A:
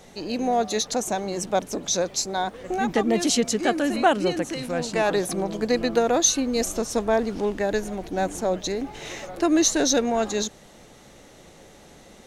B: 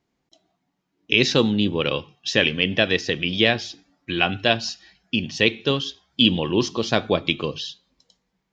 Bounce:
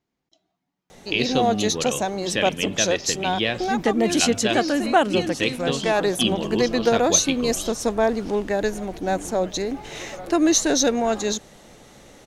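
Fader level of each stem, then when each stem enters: +1.5, −5.5 decibels; 0.90, 0.00 seconds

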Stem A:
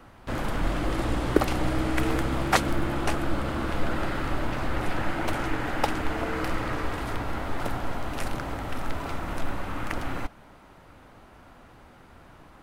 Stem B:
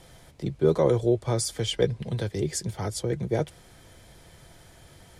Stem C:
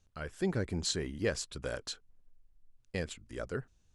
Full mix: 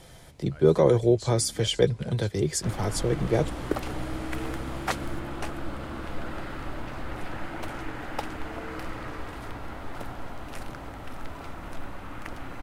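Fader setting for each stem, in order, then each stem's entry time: −7.0, +2.0, −8.5 decibels; 2.35, 0.00, 0.35 seconds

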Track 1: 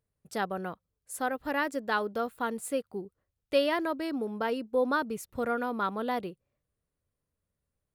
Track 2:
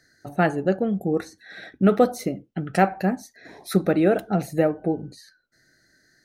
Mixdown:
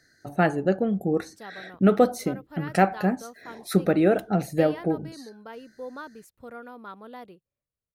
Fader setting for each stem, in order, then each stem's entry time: −11.0, −1.0 decibels; 1.05, 0.00 seconds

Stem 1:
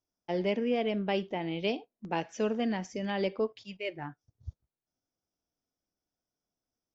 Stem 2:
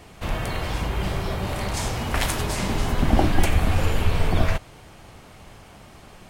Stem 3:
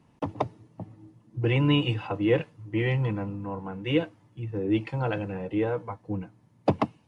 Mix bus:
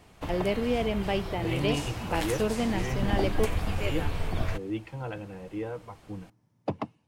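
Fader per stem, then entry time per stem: +1.5, −9.5, −8.0 decibels; 0.00, 0.00, 0.00 seconds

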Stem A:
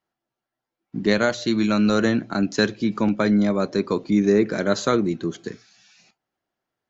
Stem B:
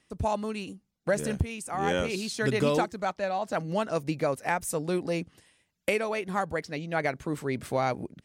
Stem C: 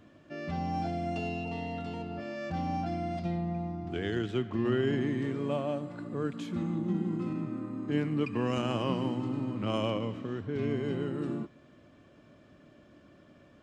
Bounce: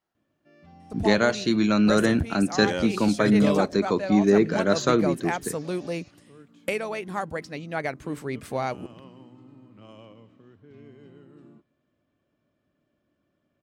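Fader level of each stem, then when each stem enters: −1.0, −1.0, −17.0 decibels; 0.00, 0.80, 0.15 seconds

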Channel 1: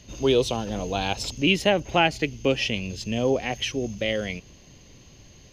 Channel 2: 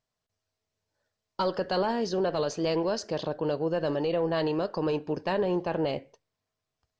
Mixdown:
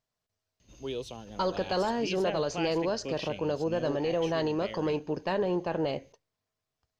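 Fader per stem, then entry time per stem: −15.5, −1.5 decibels; 0.60, 0.00 seconds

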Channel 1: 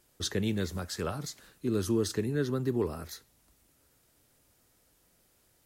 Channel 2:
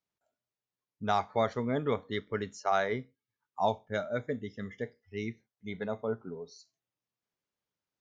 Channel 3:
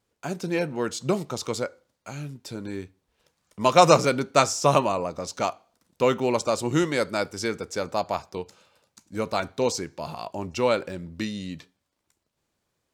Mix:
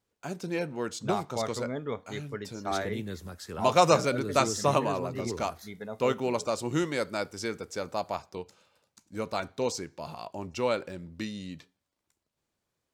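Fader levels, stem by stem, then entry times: −6.0, −4.0, −5.5 decibels; 2.50, 0.00, 0.00 seconds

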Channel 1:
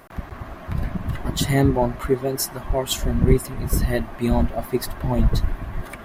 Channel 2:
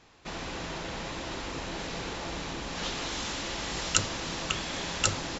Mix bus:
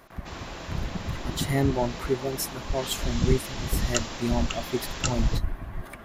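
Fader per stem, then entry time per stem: −6.0, −3.0 decibels; 0.00, 0.00 seconds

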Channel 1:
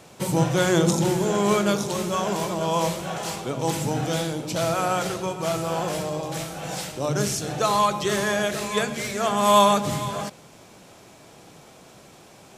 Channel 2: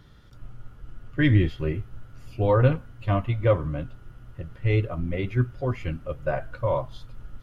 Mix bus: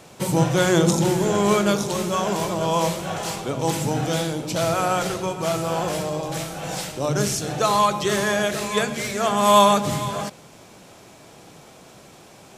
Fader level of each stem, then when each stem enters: +2.0, −20.0 decibels; 0.00, 0.00 seconds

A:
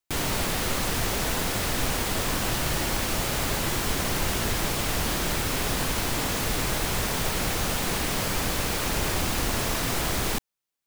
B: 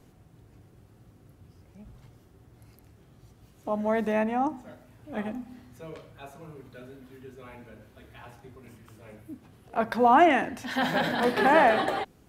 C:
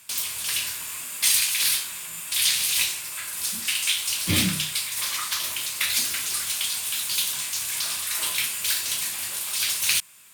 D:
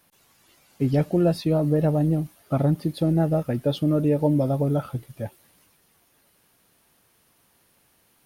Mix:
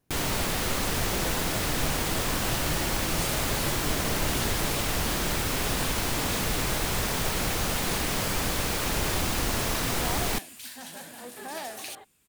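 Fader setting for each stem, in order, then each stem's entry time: −1.0, −18.5, −17.5, −19.0 decibels; 0.00, 0.00, 1.95, 0.00 seconds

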